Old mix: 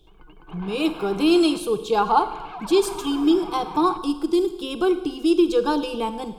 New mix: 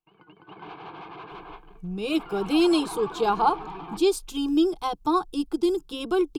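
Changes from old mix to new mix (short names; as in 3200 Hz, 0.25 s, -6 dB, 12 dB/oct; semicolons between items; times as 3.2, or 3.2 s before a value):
speech: entry +1.30 s; reverb: off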